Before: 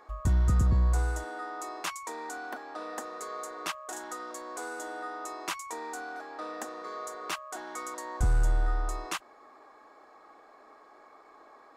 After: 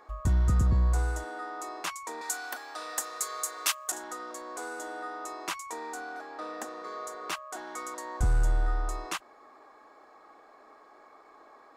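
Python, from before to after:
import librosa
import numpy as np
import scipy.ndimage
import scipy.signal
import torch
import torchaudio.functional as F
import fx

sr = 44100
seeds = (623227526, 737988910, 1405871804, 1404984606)

y = fx.tilt_eq(x, sr, slope=4.5, at=(2.21, 3.92))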